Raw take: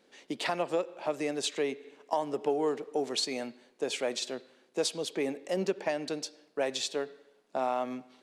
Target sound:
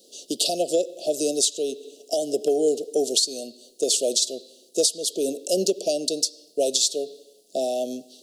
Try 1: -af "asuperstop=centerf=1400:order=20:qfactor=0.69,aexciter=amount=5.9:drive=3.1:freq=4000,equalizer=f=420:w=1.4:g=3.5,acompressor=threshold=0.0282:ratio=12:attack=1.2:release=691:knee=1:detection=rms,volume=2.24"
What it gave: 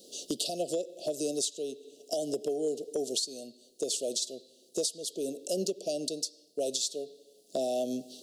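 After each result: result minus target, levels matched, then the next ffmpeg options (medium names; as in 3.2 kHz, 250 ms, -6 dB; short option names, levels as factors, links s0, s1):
compression: peak gain reduction +10.5 dB; 125 Hz band +6.0 dB
-af "asuperstop=centerf=1400:order=20:qfactor=0.69,aexciter=amount=5.9:drive=3.1:freq=4000,equalizer=f=420:w=1.4:g=3.5,acompressor=threshold=0.106:ratio=12:attack=1.2:release=691:knee=1:detection=rms,volume=2.24"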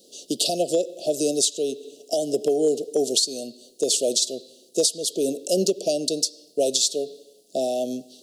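125 Hz band +5.5 dB
-af "asuperstop=centerf=1400:order=20:qfactor=0.69,equalizer=f=86:w=0.81:g=-14,aexciter=amount=5.9:drive=3.1:freq=4000,equalizer=f=420:w=1.4:g=3.5,acompressor=threshold=0.106:ratio=12:attack=1.2:release=691:knee=1:detection=rms,volume=2.24"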